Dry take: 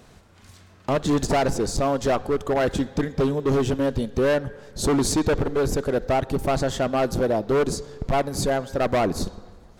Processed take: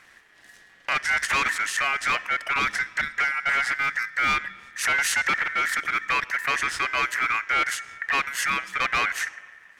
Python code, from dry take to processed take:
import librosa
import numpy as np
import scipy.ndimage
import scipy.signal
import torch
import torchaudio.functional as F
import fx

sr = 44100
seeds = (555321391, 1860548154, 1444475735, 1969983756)

y = fx.dynamic_eq(x, sr, hz=4500.0, q=0.88, threshold_db=-46.0, ratio=4.0, max_db=5)
y = y * np.sin(2.0 * np.pi * 1800.0 * np.arange(len(y)) / sr)